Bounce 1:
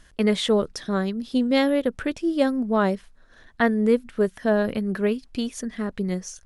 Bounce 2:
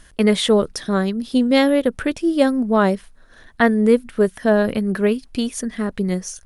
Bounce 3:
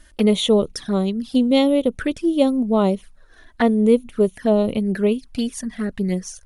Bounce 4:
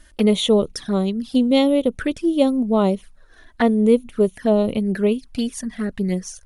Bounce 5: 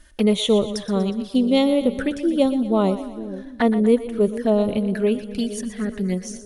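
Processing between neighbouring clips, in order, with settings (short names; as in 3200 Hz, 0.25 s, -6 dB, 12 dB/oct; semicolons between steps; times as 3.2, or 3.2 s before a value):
bell 9600 Hz +8 dB 0.26 oct; gain +5 dB
envelope flanger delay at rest 3.6 ms, full sweep at -16 dBFS
nothing audible
split-band echo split 480 Hz, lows 0.463 s, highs 0.121 s, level -12 dB; gain -1.5 dB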